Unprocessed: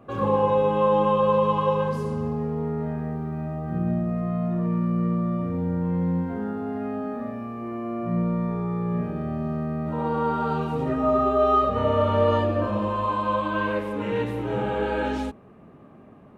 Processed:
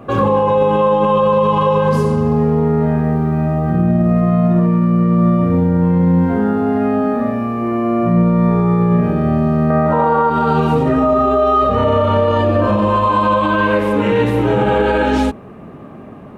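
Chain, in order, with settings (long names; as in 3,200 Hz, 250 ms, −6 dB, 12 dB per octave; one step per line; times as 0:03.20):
0:09.70–0:10.30: flat-topped bell 990 Hz +8.5 dB 2.3 octaves
boost into a limiter +19 dB
level −5 dB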